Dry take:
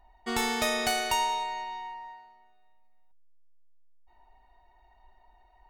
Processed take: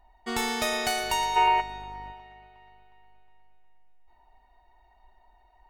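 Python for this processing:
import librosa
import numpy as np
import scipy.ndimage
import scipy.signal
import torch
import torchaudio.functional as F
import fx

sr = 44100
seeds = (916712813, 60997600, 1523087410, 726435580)

y = fx.dmg_buzz(x, sr, base_hz=50.0, harmonics=29, level_db=-48.0, tilt_db=-6, odd_only=False, at=(1.01, 2.11), fade=0.02)
y = fx.echo_split(y, sr, split_hz=2900.0, low_ms=361, high_ms=115, feedback_pct=52, wet_db=-15.0)
y = fx.spec_box(y, sr, start_s=1.36, length_s=0.25, low_hz=330.0, high_hz=3100.0, gain_db=12)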